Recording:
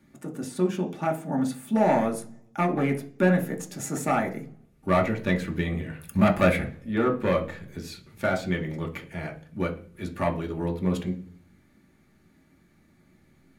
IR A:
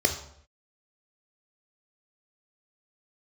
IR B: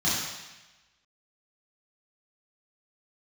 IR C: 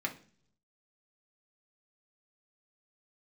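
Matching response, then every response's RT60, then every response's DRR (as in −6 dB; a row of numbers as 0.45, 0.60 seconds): C; 0.70, 1.1, 0.45 seconds; 4.0, −10.0, 0.5 decibels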